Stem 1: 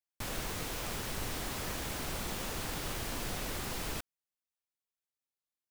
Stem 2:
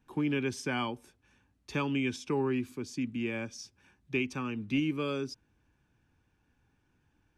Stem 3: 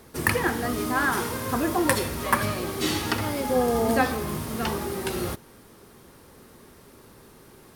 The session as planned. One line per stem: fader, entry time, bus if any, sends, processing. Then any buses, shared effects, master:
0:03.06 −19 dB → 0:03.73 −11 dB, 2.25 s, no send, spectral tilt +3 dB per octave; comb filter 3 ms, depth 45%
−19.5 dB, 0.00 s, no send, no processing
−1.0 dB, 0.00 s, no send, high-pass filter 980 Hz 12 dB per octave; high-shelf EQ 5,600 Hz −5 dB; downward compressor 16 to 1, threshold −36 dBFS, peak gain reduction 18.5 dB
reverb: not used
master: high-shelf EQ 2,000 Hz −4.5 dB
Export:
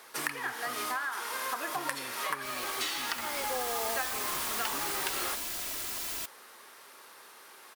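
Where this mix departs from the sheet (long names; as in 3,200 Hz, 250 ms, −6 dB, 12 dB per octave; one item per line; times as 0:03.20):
stem 1 −19.0 dB → −12.5 dB
stem 3 −1.0 dB → +5.5 dB
master: missing high-shelf EQ 2,000 Hz −4.5 dB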